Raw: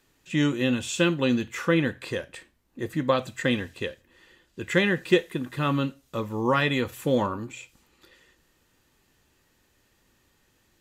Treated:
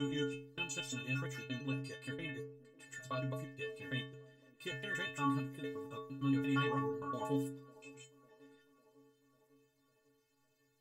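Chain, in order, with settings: slices in reverse order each 0.115 s, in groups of 5; metallic resonator 130 Hz, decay 0.82 s, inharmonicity 0.03; band-limited delay 0.55 s, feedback 60%, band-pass 440 Hz, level -21 dB; gain +2 dB

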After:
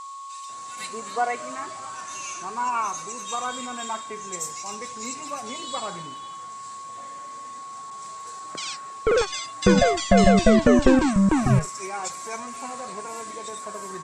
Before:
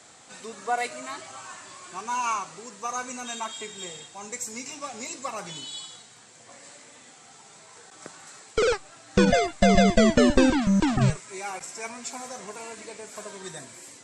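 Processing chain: bands offset in time highs, lows 0.49 s, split 2500 Hz; whine 1100 Hz -38 dBFS; gain +2.5 dB

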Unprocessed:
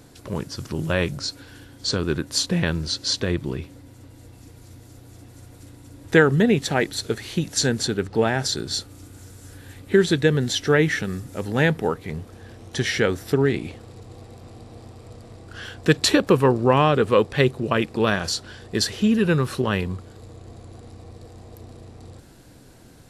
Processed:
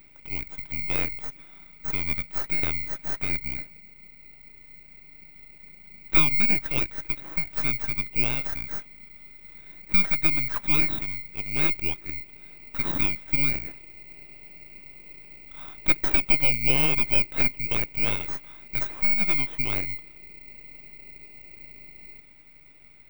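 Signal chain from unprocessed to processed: band-swap scrambler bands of 2000 Hz; bell 300 Hz +10.5 dB 0.41 oct; half-wave rectifier; tape spacing loss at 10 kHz 32 dB; careless resampling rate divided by 2×, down filtered, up zero stuff

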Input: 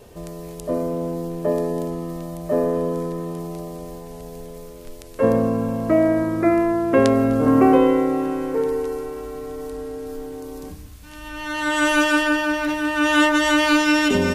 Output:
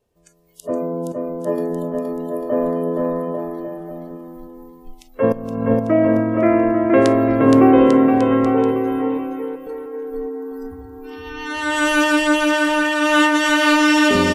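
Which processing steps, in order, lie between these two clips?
spectral noise reduction 26 dB; 1.12–1.58 gate -20 dBFS, range -9 dB; 5.32–5.74 negative-ratio compressor -24 dBFS, ratio -0.5; 8.71–9.67 differentiator; bouncing-ball echo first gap 0.47 s, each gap 0.8×, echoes 5; gain +1 dB

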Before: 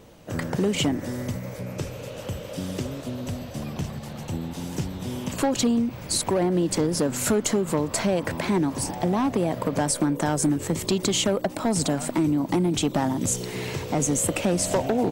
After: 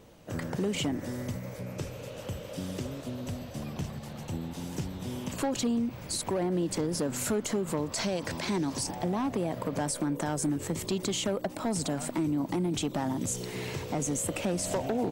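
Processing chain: 7.92–8.87 bell 5300 Hz +10.5 dB 1.4 oct; limiter -17.5 dBFS, peak gain reduction 10.5 dB; gain -5 dB

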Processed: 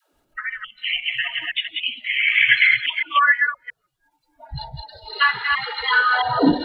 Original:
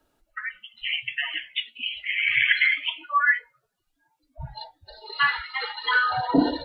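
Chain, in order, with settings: reverse delay 0.168 s, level -3.5 dB; transient shaper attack 0 dB, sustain -5 dB; dispersion lows, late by 0.133 s, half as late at 380 Hz; gain +4 dB

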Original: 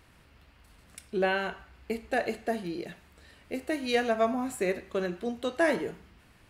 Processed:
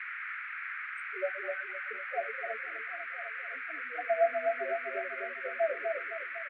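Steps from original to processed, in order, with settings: reverse delay 0.16 s, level -13.5 dB; loudest bins only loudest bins 2; comb 7.3 ms, depth 76%; on a send: darkening echo 0.253 s, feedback 66%, level -4 dB; on the sum: envelope flanger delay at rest 2.7 ms, full sweep at -27 dBFS; HPF 580 Hz 24 dB/oct; band noise 1300–2300 Hz -40 dBFS

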